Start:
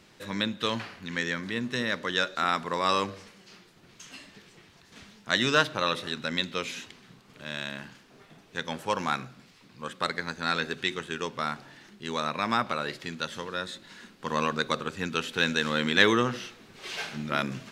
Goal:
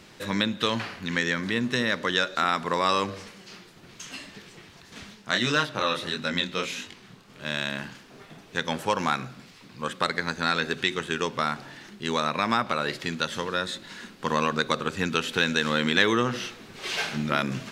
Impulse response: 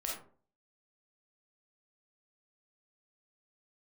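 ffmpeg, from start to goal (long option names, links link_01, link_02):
-filter_complex "[0:a]asplit=3[link_01][link_02][link_03];[link_01]afade=type=out:start_time=5.14:duration=0.02[link_04];[link_02]flanger=delay=20:depth=7.5:speed=1.6,afade=type=in:start_time=5.14:duration=0.02,afade=type=out:start_time=7.43:duration=0.02[link_05];[link_03]afade=type=in:start_time=7.43:duration=0.02[link_06];[link_04][link_05][link_06]amix=inputs=3:normalize=0,acompressor=threshold=-29dB:ratio=2,volume=6.5dB"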